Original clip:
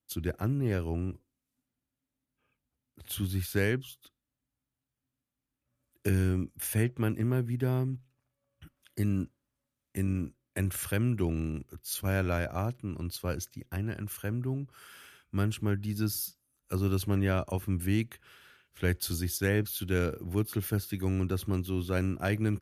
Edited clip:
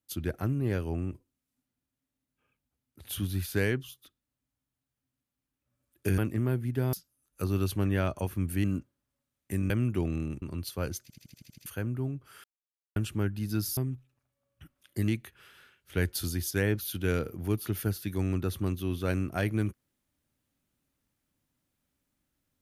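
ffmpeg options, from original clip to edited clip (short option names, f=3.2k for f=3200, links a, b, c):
-filter_complex "[0:a]asplit=18[a][b][c][d][e][f][g][h][i][j][k][l][m][n][o][p][q][r];[a]atrim=end=6.182[s];[b]atrim=start=7.028:end=7.782[t];[c]atrim=start=16.238:end=17.952[u];[d]atrim=start=9.088:end=10.152[v];[e]atrim=start=10.938:end=11.662[w];[f]atrim=start=12.888:end=13.572[x];[g]atrim=start=13.488:end=13.572[y];[h]atrim=start=13.488:end=13.572[z];[i]atrim=start=13.488:end=13.572[aa];[j]atrim=start=13.488:end=13.572[ab];[k]atrim=start=13.488:end=13.572[ac];[l]atrim=start=13.488:end=13.572[ad];[m]atrim=start=13.488:end=13.572[ae];[n]atrim=start=14.128:end=14.91,asetpts=PTS-STARTPTS,afade=t=out:st=0.778:d=0.004:c=hsin[af];[o]atrim=start=14.91:end=15.43,asetpts=PTS-STARTPTS,volume=0[ag];[p]atrim=start=15.43:end=16.242,asetpts=PTS-STARTPTS,afade=t=in:d=0.004:c=hsin[ah];[q]atrim=start=7.778:end=9.092[ai];[r]atrim=start=17.948[aj];[s][t]acrossfade=d=0.004:c1=hsin:c2=hsin[ak];[ak][u]acrossfade=d=0.004:c1=hsin:c2=hsin[al];[al][v]acrossfade=d=0.004:c1=hsin:c2=hsin[am];[am][w]acrossfade=d=0.004:c1=hsin:c2=hsin[an];[an][x]acrossfade=d=0.004:c1=hsin:c2=hsin[ao];[ao][y]acrossfade=d=0.004:c1=hsin:c2=hsin[ap];[ap][z]acrossfade=d=0.004:c1=hsin:c2=hsin[aq];[aq][aa]acrossfade=d=0.004:c1=hsin:c2=hsin[ar];[ar][ab]acrossfade=d=0.004:c1=hsin:c2=hsin[as];[as][ac]acrossfade=d=0.004:c1=hsin:c2=hsin[at];[at][ad]acrossfade=d=0.004:c1=hsin:c2=hsin[au];[au][ae]acrossfade=d=0.004:c1=hsin:c2=hsin[av];[af][ag][ah]concat=n=3:v=0:a=1[aw];[av][aw]acrossfade=d=0.004:c1=hsin:c2=hsin[ax];[ax][ai]acrossfade=d=0.004:c1=hsin:c2=hsin[ay];[ay][aj]acrossfade=d=0.004:c1=hsin:c2=hsin"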